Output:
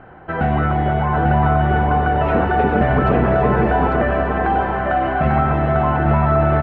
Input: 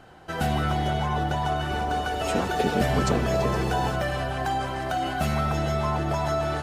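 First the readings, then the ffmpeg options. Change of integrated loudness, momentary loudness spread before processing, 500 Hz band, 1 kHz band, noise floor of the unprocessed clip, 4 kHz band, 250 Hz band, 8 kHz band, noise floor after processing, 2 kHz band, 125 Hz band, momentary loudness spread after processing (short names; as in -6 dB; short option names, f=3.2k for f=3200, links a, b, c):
+9.0 dB, 4 LU, +9.0 dB, +9.0 dB, -32 dBFS, -5.5 dB, +9.0 dB, under -30 dB, -24 dBFS, +8.0 dB, +9.5 dB, 3 LU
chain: -filter_complex "[0:a]lowpass=f=2.1k:w=0.5412,lowpass=f=2.1k:w=1.3066,asplit=2[a][b];[b]alimiter=limit=-18dB:level=0:latency=1,volume=-0.5dB[c];[a][c]amix=inputs=2:normalize=0,aecho=1:1:846:0.631,volume=2.5dB"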